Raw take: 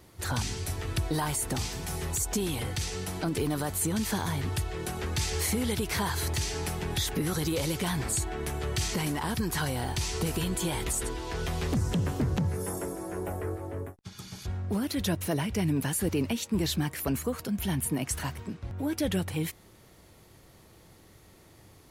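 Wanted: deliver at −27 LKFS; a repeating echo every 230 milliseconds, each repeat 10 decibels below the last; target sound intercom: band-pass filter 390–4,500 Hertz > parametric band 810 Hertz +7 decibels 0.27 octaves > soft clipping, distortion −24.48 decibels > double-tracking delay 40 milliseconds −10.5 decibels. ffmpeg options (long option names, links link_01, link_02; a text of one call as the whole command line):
ffmpeg -i in.wav -filter_complex "[0:a]highpass=390,lowpass=4500,equalizer=frequency=810:width_type=o:width=0.27:gain=7,aecho=1:1:230|460|690|920:0.316|0.101|0.0324|0.0104,asoftclip=threshold=-21dB,asplit=2[link_01][link_02];[link_02]adelay=40,volume=-10.5dB[link_03];[link_01][link_03]amix=inputs=2:normalize=0,volume=8.5dB" out.wav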